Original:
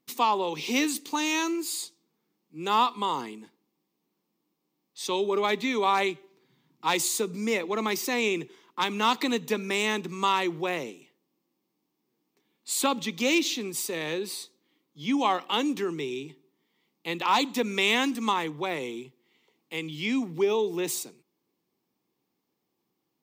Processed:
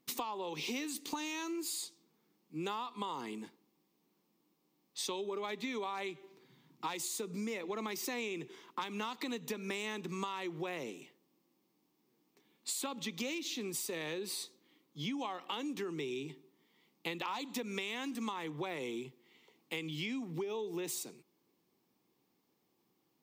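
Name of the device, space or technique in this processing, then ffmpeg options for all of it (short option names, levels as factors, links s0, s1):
serial compression, leveller first: -af "acompressor=threshold=0.0447:ratio=2,acompressor=threshold=0.0126:ratio=10,volume=1.26"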